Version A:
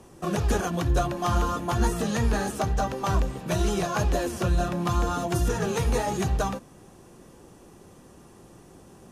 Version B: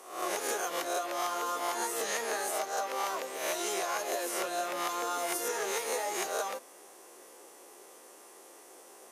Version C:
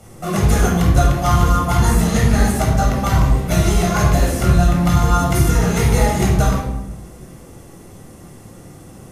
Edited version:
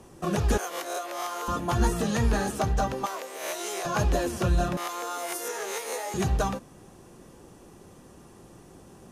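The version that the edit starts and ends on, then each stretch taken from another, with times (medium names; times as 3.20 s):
A
0.58–1.48 s: from B
3.06–3.85 s: from B
4.77–6.14 s: from B
not used: C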